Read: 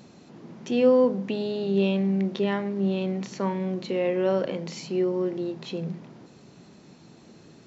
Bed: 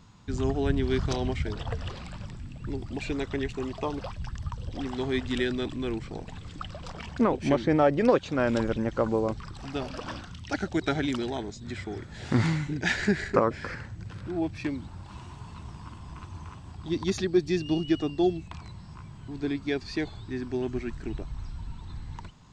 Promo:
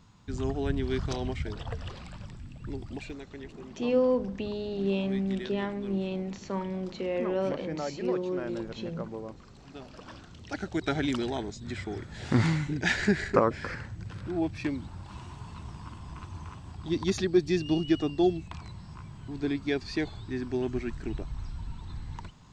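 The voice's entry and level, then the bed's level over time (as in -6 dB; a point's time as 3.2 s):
3.10 s, -5.5 dB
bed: 2.94 s -3.5 dB
3.22 s -13 dB
9.75 s -13 dB
11.09 s 0 dB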